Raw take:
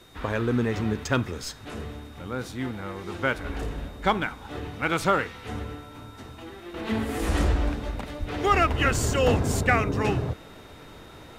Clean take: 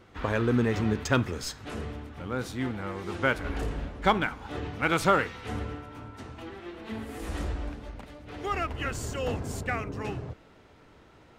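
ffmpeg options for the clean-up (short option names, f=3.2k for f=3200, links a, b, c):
-filter_complex "[0:a]bandreject=f=3.7k:w=30,asplit=3[a][b][c];[a]afade=t=out:st=8.19:d=0.02[d];[b]highpass=f=140:w=0.5412,highpass=f=140:w=1.3066,afade=t=in:st=8.19:d=0.02,afade=t=out:st=8.31:d=0.02[e];[c]afade=t=in:st=8.31:d=0.02[f];[d][e][f]amix=inputs=3:normalize=0,agate=range=-21dB:threshold=-37dB,asetnsamples=n=441:p=0,asendcmd='6.74 volume volume -9.5dB',volume=0dB"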